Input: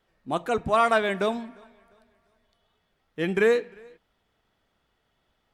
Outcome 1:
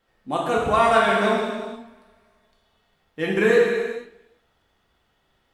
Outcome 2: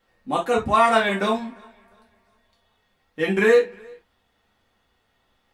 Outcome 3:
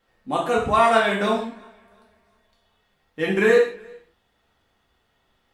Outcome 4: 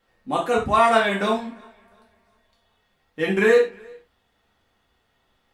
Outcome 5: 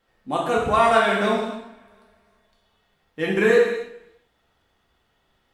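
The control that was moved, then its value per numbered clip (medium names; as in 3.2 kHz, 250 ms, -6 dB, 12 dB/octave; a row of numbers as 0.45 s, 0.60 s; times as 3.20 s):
gated-style reverb, gate: 520 ms, 90 ms, 190 ms, 130 ms, 340 ms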